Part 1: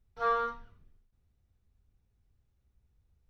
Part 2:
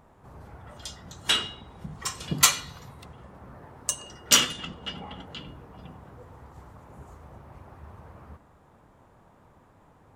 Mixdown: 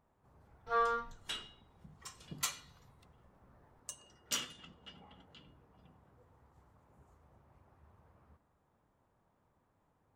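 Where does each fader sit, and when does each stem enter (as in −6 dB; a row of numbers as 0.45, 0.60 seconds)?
−2.5, −18.0 decibels; 0.50, 0.00 seconds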